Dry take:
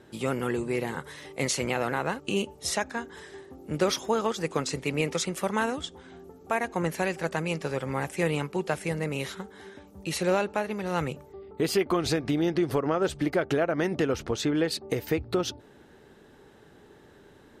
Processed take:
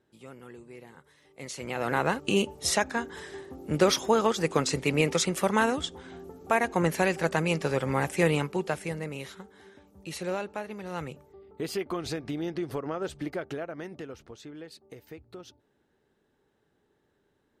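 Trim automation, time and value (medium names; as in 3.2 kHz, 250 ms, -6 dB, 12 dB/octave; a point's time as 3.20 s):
1.22 s -18 dB
1.63 s -8.5 dB
1.97 s +3 dB
8.28 s +3 dB
9.23 s -7 dB
13.26 s -7 dB
14.41 s -18 dB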